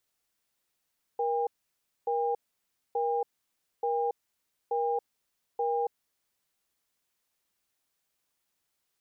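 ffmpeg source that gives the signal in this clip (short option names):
-f lavfi -i "aevalsrc='0.0376*(sin(2*PI*473*t)+sin(2*PI*805*t))*clip(min(mod(t,0.88),0.28-mod(t,0.88))/0.005,0,1)':d=5.03:s=44100"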